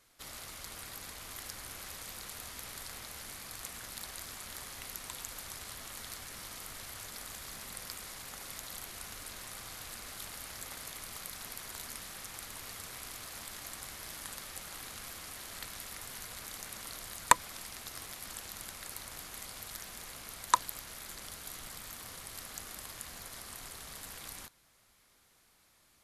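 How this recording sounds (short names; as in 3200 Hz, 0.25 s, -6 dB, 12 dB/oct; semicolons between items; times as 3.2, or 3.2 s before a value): noise floor -67 dBFS; spectral tilt -1.5 dB/oct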